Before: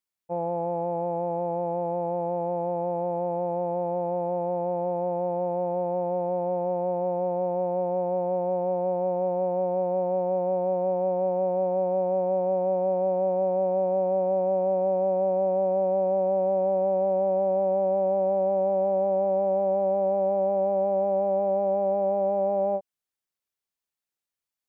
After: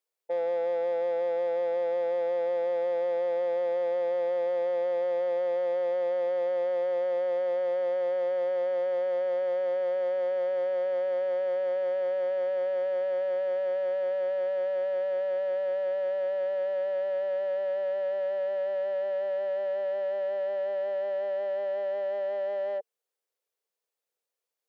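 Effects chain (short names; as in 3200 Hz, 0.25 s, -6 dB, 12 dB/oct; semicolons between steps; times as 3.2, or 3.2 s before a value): limiter -25 dBFS, peak gain reduction 8.5 dB; soft clip -35.5 dBFS, distortion -10 dB; resonant high-pass 470 Hz, resonance Q 5.1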